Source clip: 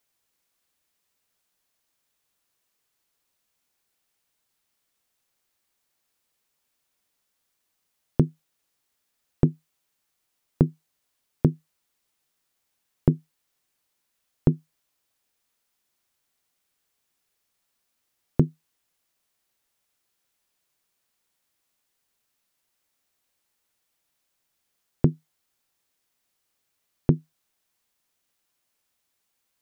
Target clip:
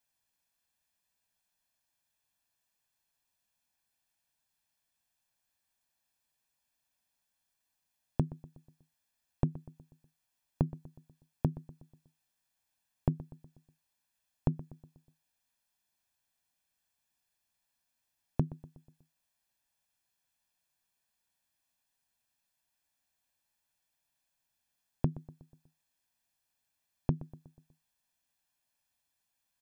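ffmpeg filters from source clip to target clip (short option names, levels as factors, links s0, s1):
-filter_complex "[0:a]aecho=1:1:1.2:0.55,acompressor=threshold=0.158:ratio=6,asplit=2[s0][s1];[s1]adelay=122,lowpass=f=2000:p=1,volume=0.141,asplit=2[s2][s3];[s3]adelay=122,lowpass=f=2000:p=1,volume=0.52,asplit=2[s4][s5];[s5]adelay=122,lowpass=f=2000:p=1,volume=0.52,asplit=2[s6][s7];[s7]adelay=122,lowpass=f=2000:p=1,volume=0.52,asplit=2[s8][s9];[s9]adelay=122,lowpass=f=2000:p=1,volume=0.52[s10];[s2][s4][s6][s8][s10]amix=inputs=5:normalize=0[s11];[s0][s11]amix=inputs=2:normalize=0,volume=0.422"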